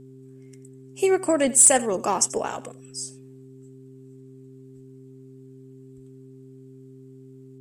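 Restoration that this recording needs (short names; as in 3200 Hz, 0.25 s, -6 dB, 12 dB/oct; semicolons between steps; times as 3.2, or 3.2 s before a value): clip repair -6 dBFS; de-hum 131.7 Hz, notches 3; inverse comb 86 ms -18.5 dB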